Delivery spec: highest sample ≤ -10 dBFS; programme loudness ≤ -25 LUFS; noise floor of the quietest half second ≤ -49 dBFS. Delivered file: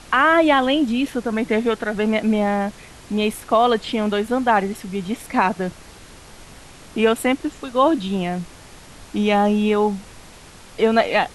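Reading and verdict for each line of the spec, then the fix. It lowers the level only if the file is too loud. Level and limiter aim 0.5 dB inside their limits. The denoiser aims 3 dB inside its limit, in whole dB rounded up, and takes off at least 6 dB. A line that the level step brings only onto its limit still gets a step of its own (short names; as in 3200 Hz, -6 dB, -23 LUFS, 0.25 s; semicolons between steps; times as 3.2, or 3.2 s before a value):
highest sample -5.5 dBFS: fail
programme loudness -20.0 LUFS: fail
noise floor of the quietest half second -43 dBFS: fail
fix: denoiser 6 dB, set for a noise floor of -43 dBFS; gain -5.5 dB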